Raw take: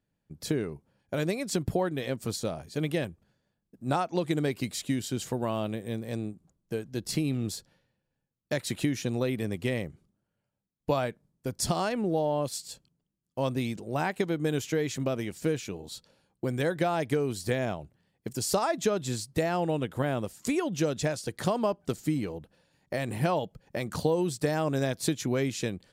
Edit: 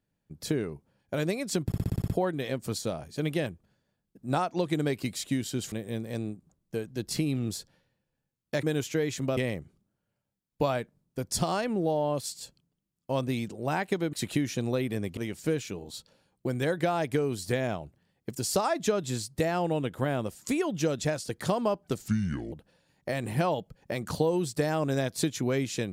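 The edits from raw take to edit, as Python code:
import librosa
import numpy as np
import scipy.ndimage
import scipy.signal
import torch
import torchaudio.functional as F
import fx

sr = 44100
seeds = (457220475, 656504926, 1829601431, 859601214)

y = fx.edit(x, sr, fx.stutter(start_s=1.66, slice_s=0.06, count=8),
    fx.cut(start_s=5.3, length_s=0.4),
    fx.swap(start_s=8.61, length_s=1.04, other_s=14.41, other_length_s=0.74),
    fx.speed_span(start_s=22.06, length_s=0.31, speed=0.7), tone=tone)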